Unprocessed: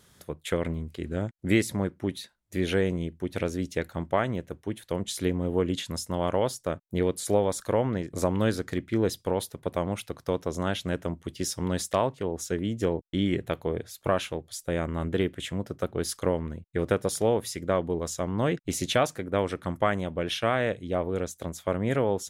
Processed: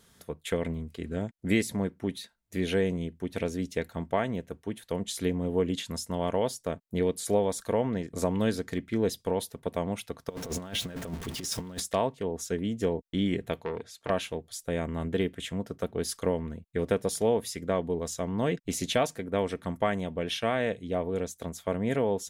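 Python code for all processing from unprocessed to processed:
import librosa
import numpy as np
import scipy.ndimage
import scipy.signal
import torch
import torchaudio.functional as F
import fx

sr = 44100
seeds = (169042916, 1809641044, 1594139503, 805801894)

y = fx.chain(x, sr, fx.zero_step(step_db=-37.5),
    fx.over_compress(threshold_db=-32.0, ratio=-0.5), at=(10.29, 11.8))
y = fx.chain(y, sr, fx.lowpass(hz=8200.0, slope=12),
    fx.low_shelf(hz=79.0, db=-10.5),
    fx.transformer_sat(knee_hz=2000.0), at=(13.61, 14.1))
y = fx.dynamic_eq(y, sr, hz=1300.0, q=3.2, threshold_db=-48.0, ratio=4.0, max_db=-6)
y = y + 0.32 * np.pad(y, (int(4.4 * sr / 1000.0), 0))[:len(y)]
y = F.gain(torch.from_numpy(y), -2.0).numpy()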